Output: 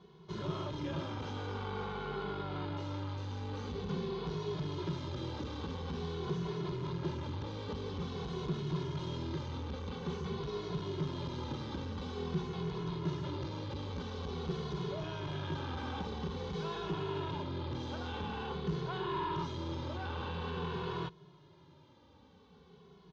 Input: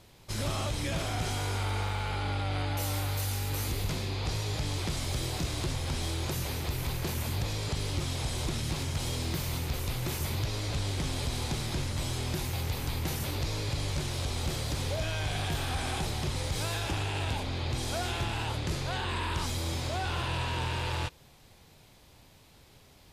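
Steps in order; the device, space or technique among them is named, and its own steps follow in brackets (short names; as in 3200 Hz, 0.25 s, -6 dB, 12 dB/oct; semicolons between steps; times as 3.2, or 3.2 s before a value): thirty-one-band EQ 2500 Hz -11 dB, 6300 Hz +11 dB, 10000 Hz -11 dB; barber-pole flanger into a guitar amplifier (endless flanger 2.3 ms -0.48 Hz; soft clip -32 dBFS, distortion -14 dB; speaker cabinet 89–3400 Hz, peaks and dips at 110 Hz -7 dB, 170 Hz +10 dB, 400 Hz +9 dB, 680 Hz -8 dB, 1000 Hz +5 dB, 1900 Hz -8 dB); gain +1 dB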